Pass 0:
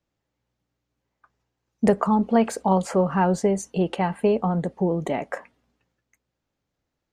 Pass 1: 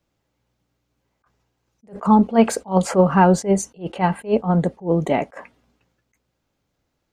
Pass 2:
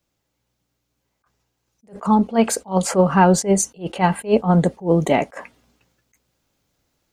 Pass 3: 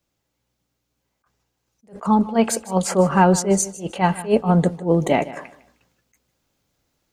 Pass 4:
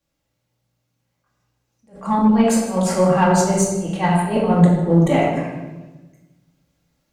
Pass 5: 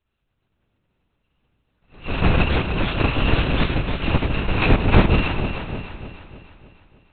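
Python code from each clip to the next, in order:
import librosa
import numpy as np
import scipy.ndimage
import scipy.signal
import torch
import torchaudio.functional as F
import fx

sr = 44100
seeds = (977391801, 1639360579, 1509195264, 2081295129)

y1 = fx.notch(x, sr, hz=1800.0, q=22.0)
y1 = fx.attack_slew(y1, sr, db_per_s=260.0)
y1 = y1 * librosa.db_to_amplitude(7.0)
y2 = fx.high_shelf(y1, sr, hz=3800.0, db=9.0)
y2 = fx.rider(y2, sr, range_db=10, speed_s=2.0)
y3 = fx.echo_feedback(y2, sr, ms=154, feedback_pct=28, wet_db=-17)
y3 = y3 * librosa.db_to_amplitude(-1.0)
y4 = fx.room_shoebox(y3, sr, seeds[0], volume_m3=650.0, walls='mixed', distance_m=2.3)
y4 = fx.cheby_harmonics(y4, sr, harmonics=(6,), levels_db=(-28,), full_scale_db=3.0)
y4 = y4 * librosa.db_to_amplitude(-4.5)
y5 = fx.bit_reversed(y4, sr, seeds[1], block=128)
y5 = fx.lpc_vocoder(y5, sr, seeds[2], excitation='whisper', order=8)
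y5 = fx.echo_alternate(y5, sr, ms=152, hz=800.0, feedback_pct=71, wet_db=-6.5)
y5 = y5 * librosa.db_to_amplitude(4.0)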